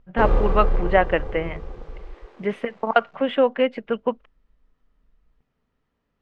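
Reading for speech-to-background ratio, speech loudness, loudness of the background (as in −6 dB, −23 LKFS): 4.5 dB, −23.0 LKFS, −27.5 LKFS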